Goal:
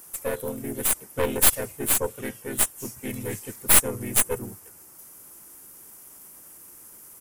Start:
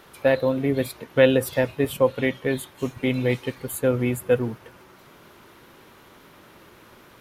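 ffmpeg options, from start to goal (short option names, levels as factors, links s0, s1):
-filter_complex "[0:a]aexciter=amount=14.6:drive=6.3:freq=6400,asplit=2[s0][s1];[s1]asetrate=37084,aresample=44100,atempo=1.18921,volume=0.891[s2];[s0][s2]amix=inputs=2:normalize=0,aeval=exprs='2.24*(cos(1*acos(clip(val(0)/2.24,-1,1)))-cos(1*PI/2))+0.891*(cos(4*acos(clip(val(0)/2.24,-1,1)))-cos(4*PI/2))+0.141*(cos(6*acos(clip(val(0)/2.24,-1,1)))-cos(6*PI/2))+0.0631*(cos(8*acos(clip(val(0)/2.24,-1,1)))-cos(8*PI/2))':c=same,volume=0.251"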